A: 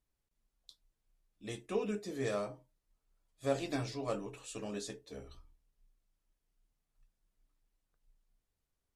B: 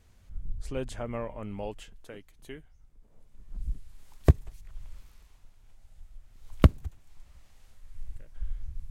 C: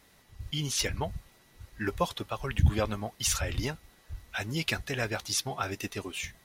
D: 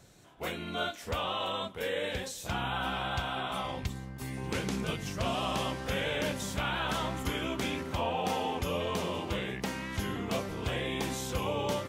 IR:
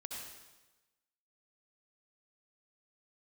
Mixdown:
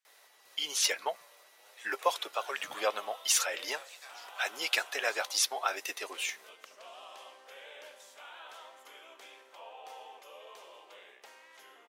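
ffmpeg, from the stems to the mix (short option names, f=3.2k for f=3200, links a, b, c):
-filter_complex "[0:a]adelay=300,volume=-3.5dB[a];[1:a]volume=-17dB,asplit=2[b][c];[c]volume=-9.5dB[d];[2:a]adelay=50,volume=2dB[e];[3:a]adelay=1600,volume=-18.5dB,asplit=2[f][g];[g]volume=-4.5dB[h];[a][b]amix=inputs=2:normalize=0,highpass=f=960:w=0.5412,highpass=f=960:w=1.3066,acompressor=threshold=-48dB:ratio=2,volume=0dB[i];[4:a]atrim=start_sample=2205[j];[d][h]amix=inputs=2:normalize=0[k];[k][j]afir=irnorm=-1:irlink=0[l];[e][f][i][l]amix=inputs=4:normalize=0,highpass=f=500:w=0.5412,highpass=f=500:w=1.3066"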